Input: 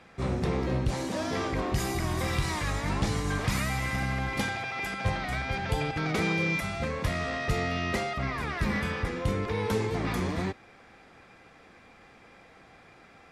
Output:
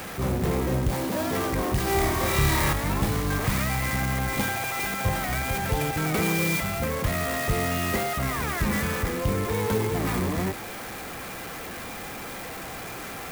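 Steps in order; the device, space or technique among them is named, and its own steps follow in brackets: 1.84–2.73 flutter echo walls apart 4.8 m, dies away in 0.9 s; early CD player with a faulty converter (zero-crossing step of -33 dBFS; clock jitter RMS 0.048 ms); gain +1.5 dB

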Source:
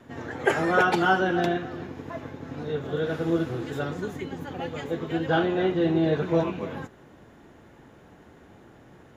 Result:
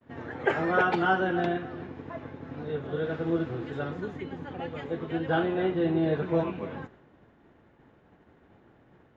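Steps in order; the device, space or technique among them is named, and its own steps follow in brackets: hearing-loss simulation (LPF 3200 Hz 12 dB/oct; expander -46 dBFS); gain -3 dB

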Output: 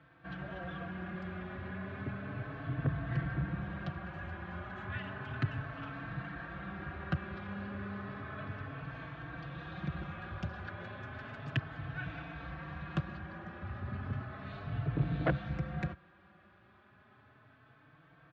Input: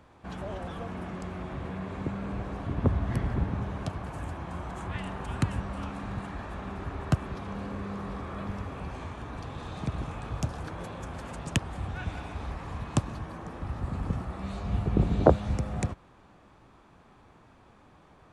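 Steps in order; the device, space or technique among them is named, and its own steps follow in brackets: barber-pole flanger into a guitar amplifier (endless flanger 4 ms +0.33 Hz; soft clip -21 dBFS, distortion -12 dB; speaker cabinet 96–3800 Hz, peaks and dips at 140 Hz +5 dB, 240 Hz -6 dB, 450 Hz -7 dB, 900 Hz -8 dB, 1600 Hz +9 dB); gain -1 dB

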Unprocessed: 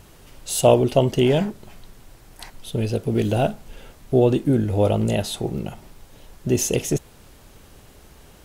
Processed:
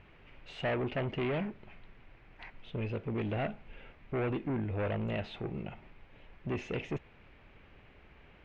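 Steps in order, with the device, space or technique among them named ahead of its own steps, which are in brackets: overdriven synthesiser ladder filter (soft clip -19.5 dBFS, distortion -8 dB; ladder low-pass 2700 Hz, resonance 55%)

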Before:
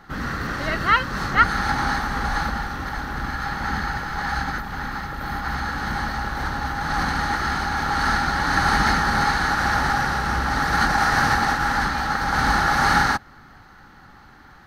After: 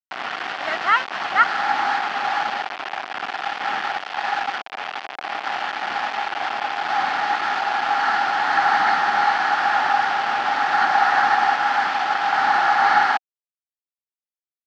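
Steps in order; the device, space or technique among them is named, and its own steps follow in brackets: hand-held game console (bit-crush 4-bit; speaker cabinet 480–4100 Hz, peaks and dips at 500 Hz -7 dB, 750 Hz +9 dB, 3900 Hz -5 dB)

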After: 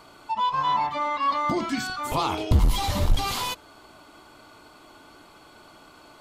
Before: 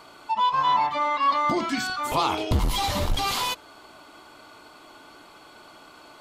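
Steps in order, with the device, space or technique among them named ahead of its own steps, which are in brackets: exciter from parts (in parallel at -12 dB: HPF 4600 Hz 12 dB/oct + soft clip -27.5 dBFS, distortion -19 dB); on the sum: low shelf 200 Hz +8 dB; gain -2.5 dB

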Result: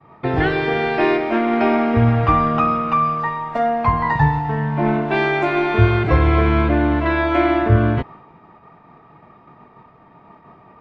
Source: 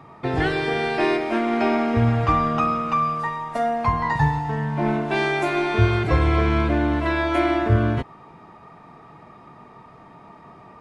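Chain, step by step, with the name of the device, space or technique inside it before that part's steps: hearing-loss simulation (LPF 3200 Hz 12 dB/oct; expander -40 dBFS); gain +4 dB

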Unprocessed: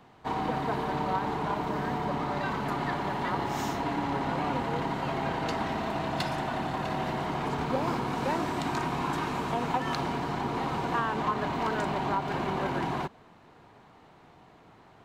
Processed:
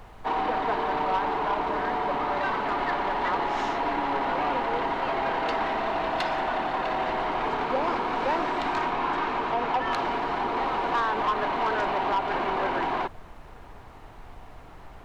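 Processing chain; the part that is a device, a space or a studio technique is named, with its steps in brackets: aircraft cabin announcement (BPF 400–3300 Hz; soft clip -25.5 dBFS, distortion -17 dB; brown noise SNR 17 dB); 8.9–9.92 high shelf 7000 Hz -9 dB; gain +7 dB

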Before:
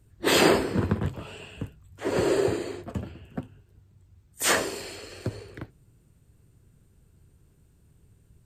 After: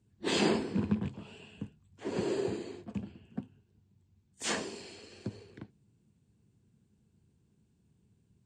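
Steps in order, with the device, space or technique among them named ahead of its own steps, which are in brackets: car door speaker with a rattle (rattling part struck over -23 dBFS, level -28 dBFS; speaker cabinet 95–7700 Hz, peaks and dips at 210 Hz +10 dB, 580 Hz -6 dB, 1300 Hz -7 dB, 1900 Hz -4 dB); gain -8.5 dB

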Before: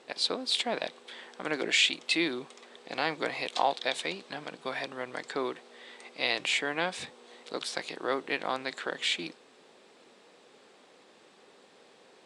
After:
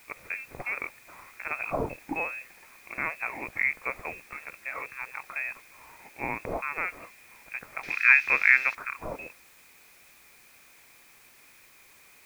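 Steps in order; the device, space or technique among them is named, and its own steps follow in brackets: scrambled radio voice (BPF 340–2800 Hz; inverted band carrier 2900 Hz; white noise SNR 21 dB); 7.83–8.75 band shelf 2900 Hz +13.5 dB 2.4 oct

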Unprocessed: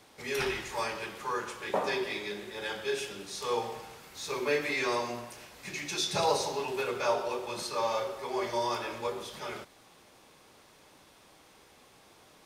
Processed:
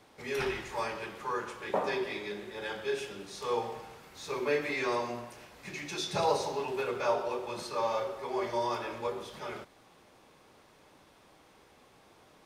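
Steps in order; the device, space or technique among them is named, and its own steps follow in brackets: behind a face mask (high shelf 2900 Hz -7.5 dB)

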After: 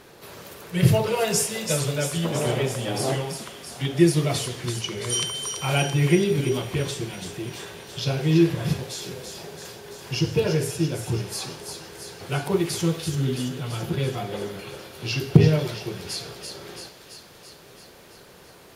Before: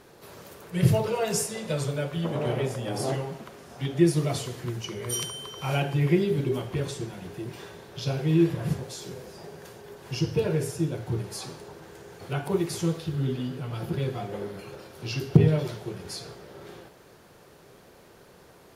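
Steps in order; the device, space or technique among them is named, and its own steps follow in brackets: presence and air boost (bell 2900 Hz +4 dB 1.8 oct; high shelf 9900 Hz +3.5 dB); 4.46–5.27 LPF 9800 Hz 24 dB/oct; thin delay 0.335 s, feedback 67%, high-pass 3400 Hz, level -5 dB; gain +3 dB

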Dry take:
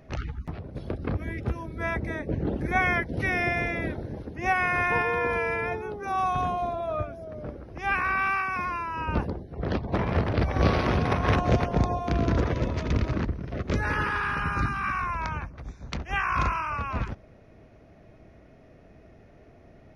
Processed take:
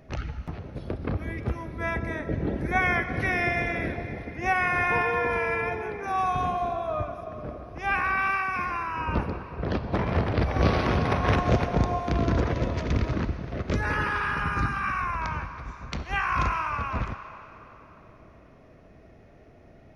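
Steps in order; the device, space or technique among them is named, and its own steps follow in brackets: filtered reverb send (on a send: HPF 500 Hz 24 dB/oct + LPF 7000 Hz + reverb RT60 3.7 s, pre-delay 27 ms, DRR 8.5 dB)

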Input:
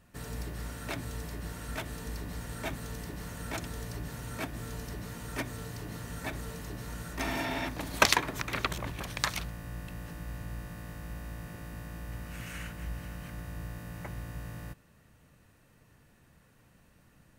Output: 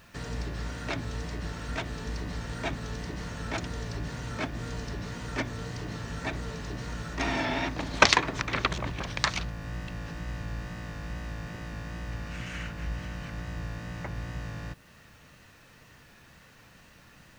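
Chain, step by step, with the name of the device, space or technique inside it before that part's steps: LPF 6400 Hz 24 dB/oct; noise-reduction cassette on a plain deck (mismatched tape noise reduction encoder only; wow and flutter; white noise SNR 35 dB); gain +4 dB

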